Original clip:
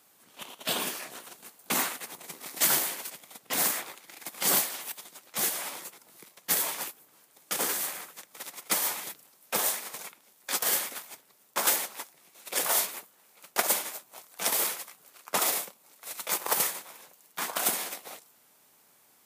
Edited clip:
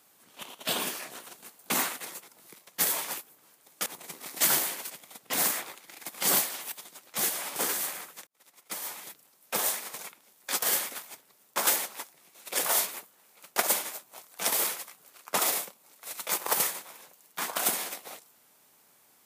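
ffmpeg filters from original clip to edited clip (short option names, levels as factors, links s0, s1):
-filter_complex "[0:a]asplit=5[s0][s1][s2][s3][s4];[s0]atrim=end=2.062[s5];[s1]atrim=start=5.758:end=7.562[s6];[s2]atrim=start=2.058:end=5.762[s7];[s3]atrim=start=7.558:end=8.27,asetpts=PTS-STARTPTS,afade=t=out:st=0.708:d=0.004:c=hsin[s8];[s4]atrim=start=8.27,asetpts=PTS-STARTPTS,afade=t=in:d=1.48[s9];[s5][s6]acrossfade=d=0.004:c1=hsin:c2=hsin[s10];[s10][s7]acrossfade=d=0.004:c1=hsin:c2=hsin[s11];[s8][s9]concat=n=2:v=0:a=1[s12];[s11][s12]acrossfade=d=0.004:c1=hsin:c2=hsin"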